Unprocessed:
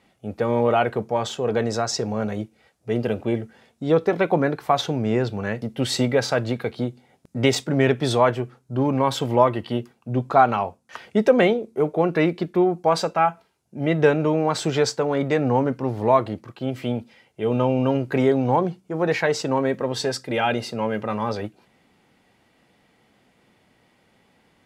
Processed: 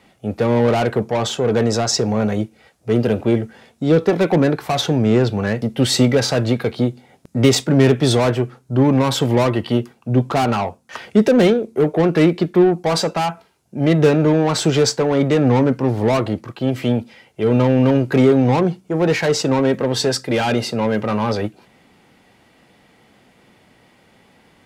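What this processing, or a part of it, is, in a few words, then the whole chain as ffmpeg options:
one-band saturation: -filter_complex "[0:a]acrossover=split=390|4500[s0][s1][s2];[s1]asoftclip=type=tanh:threshold=0.0473[s3];[s0][s3][s2]amix=inputs=3:normalize=0,volume=2.51"

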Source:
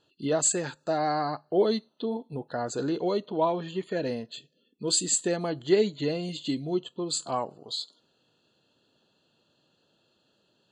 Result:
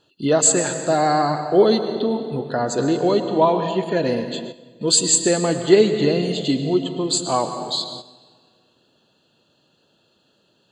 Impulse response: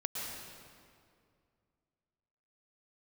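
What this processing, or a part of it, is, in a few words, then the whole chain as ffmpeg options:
keyed gated reverb: -filter_complex "[0:a]asplit=3[s0][s1][s2];[1:a]atrim=start_sample=2205[s3];[s1][s3]afir=irnorm=-1:irlink=0[s4];[s2]apad=whole_len=472645[s5];[s4][s5]sidechaingate=range=0.316:threshold=0.00158:ratio=16:detection=peak,volume=0.562[s6];[s0][s6]amix=inputs=2:normalize=0,volume=1.88"

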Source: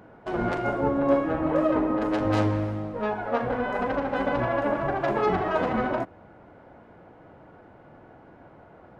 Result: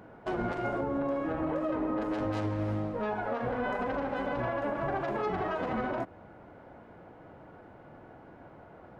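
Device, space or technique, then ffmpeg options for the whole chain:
stacked limiters: -af "alimiter=limit=0.15:level=0:latency=1:release=220,alimiter=limit=0.075:level=0:latency=1:release=75,volume=0.891"

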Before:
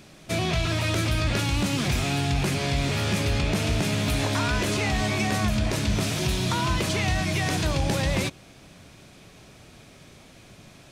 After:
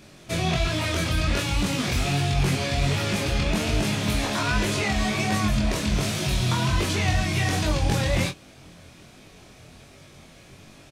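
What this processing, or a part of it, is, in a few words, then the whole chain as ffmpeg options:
double-tracked vocal: -filter_complex "[0:a]asplit=2[s0][s1];[s1]adelay=23,volume=0.447[s2];[s0][s2]amix=inputs=2:normalize=0,flanger=delay=19.5:depth=5.3:speed=1.3,volume=1.41"

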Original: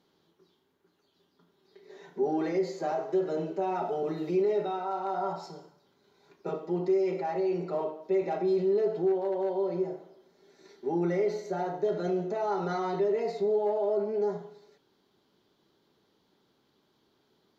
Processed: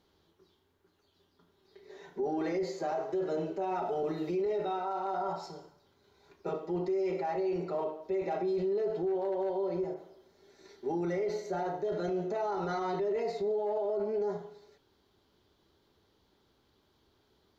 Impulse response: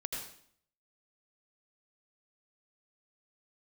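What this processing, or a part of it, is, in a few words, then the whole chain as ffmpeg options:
car stereo with a boomy subwoofer: -filter_complex "[0:a]lowshelf=f=110:t=q:w=1.5:g=11.5,alimiter=level_in=1.19:limit=0.0631:level=0:latency=1:release=21,volume=0.841,asettb=1/sr,asplit=3[s0][s1][s2];[s0]atrim=end=9.944[s3];[s1]atrim=start=9.94:end=11.13,asetpts=PTS-STARTPTS,afade=t=in:d=0.004:c=qsin,afade=t=out:st=1.186:d=0.004:c=qsin,adynamicequalizer=threshold=0.00112:dfrequency=3400:dqfactor=0.7:tfrequency=3400:tqfactor=0.7:attack=5:release=100:ratio=0.375:range=2.5:mode=boostabove:tftype=highshelf[s4];[s2]atrim=start=11.126[s5];[s3][s4]acrossfade=d=0.004:c1=hsin:c2=qsin[s6];[s6][s5]acrossfade=d=0.004:c1=qsin:c2=hsin"

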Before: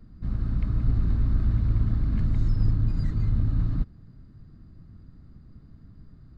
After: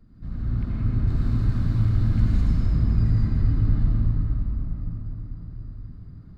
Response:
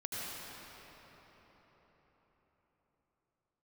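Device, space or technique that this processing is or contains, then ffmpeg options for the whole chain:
cathedral: -filter_complex "[0:a]asettb=1/sr,asplit=3[s0][s1][s2];[s0]atrim=end=1.074[s3];[s1]atrim=start=1.07:end=2.41,asetpts=PTS-STARTPTS,afade=t=in:d=0.004:c=qsin,afade=t=out:st=1.336:d=0.004:c=qsin,aemphasis=mode=production:type=75kf[s4];[s2]atrim=start=2.406[s5];[s3][s4]acrossfade=d=0.004:c1=hsin:c2=qsin[s6];[s6][s5]acrossfade=d=0.004:c1=qsin:c2=hsin[s7];[1:a]atrim=start_sample=2205[s8];[s7][s8]afir=irnorm=-1:irlink=0"

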